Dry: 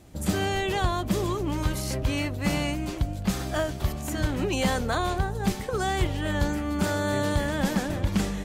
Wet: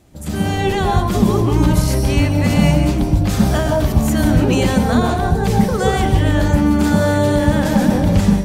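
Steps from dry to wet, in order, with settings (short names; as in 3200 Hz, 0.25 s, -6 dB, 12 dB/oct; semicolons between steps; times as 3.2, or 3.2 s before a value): limiter -19 dBFS, peak gain reduction 4.5 dB; on a send at -1 dB: reverb RT60 0.45 s, pre-delay 0.121 s; on the sum: AGC gain up to 11.5 dB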